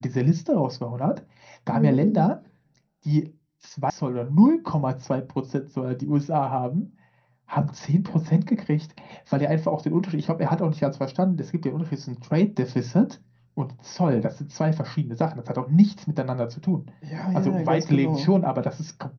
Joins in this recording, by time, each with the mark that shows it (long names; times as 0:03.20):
0:03.90: cut off before it has died away